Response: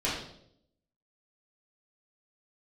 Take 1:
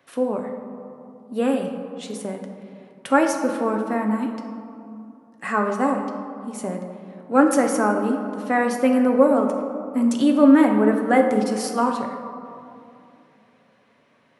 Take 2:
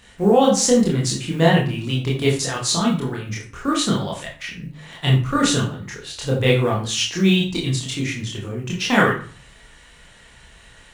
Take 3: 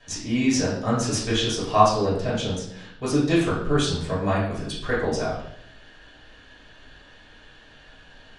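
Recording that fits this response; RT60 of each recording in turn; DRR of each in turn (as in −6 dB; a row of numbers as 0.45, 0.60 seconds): 3; 2.5, 0.40, 0.70 seconds; 2.5, −3.5, −9.5 decibels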